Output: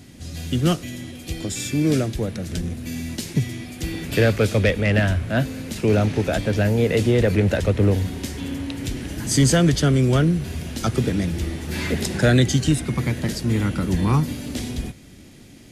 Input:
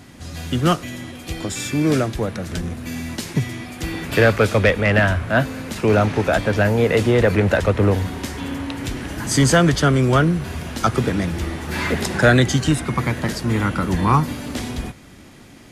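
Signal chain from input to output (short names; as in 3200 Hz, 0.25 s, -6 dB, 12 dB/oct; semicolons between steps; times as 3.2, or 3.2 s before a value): bell 1100 Hz -11 dB 1.6 oct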